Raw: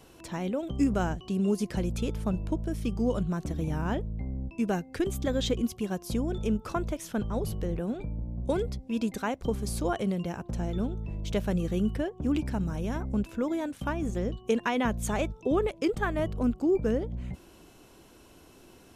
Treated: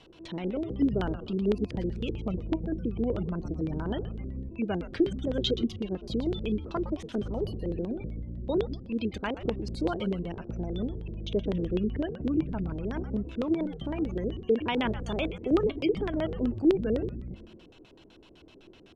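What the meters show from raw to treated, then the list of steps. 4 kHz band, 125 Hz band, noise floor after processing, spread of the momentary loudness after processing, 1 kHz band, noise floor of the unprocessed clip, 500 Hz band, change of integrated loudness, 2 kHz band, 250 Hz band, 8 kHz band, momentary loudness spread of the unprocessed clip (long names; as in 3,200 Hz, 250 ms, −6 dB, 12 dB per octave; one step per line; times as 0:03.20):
+2.5 dB, −2.0 dB, −55 dBFS, 8 LU, −4.0 dB, −55 dBFS, +0.5 dB, −0.5 dB, −3.5 dB, 0.0 dB, below −10 dB, 6 LU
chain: gate on every frequency bin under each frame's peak −30 dB strong
high-shelf EQ 4,400 Hz +6.5 dB
tuned comb filter 320 Hz, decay 0.18 s, harmonics all, mix 50%
on a send: echo with shifted repeats 111 ms, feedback 46%, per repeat −140 Hz, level −11 dB
on the sum: auto-filter low-pass square 7.9 Hz 410–3,400 Hz
level +2 dB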